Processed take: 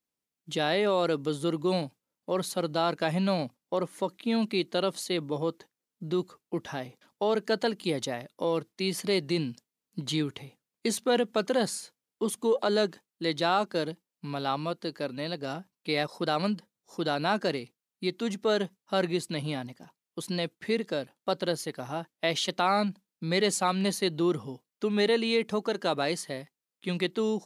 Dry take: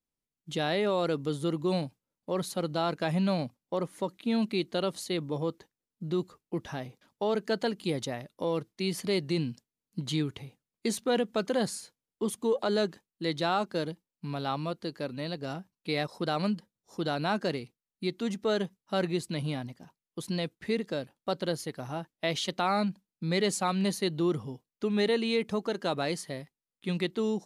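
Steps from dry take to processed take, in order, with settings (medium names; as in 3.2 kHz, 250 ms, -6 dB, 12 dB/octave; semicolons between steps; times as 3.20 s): high-pass 210 Hz 6 dB/octave; trim +3 dB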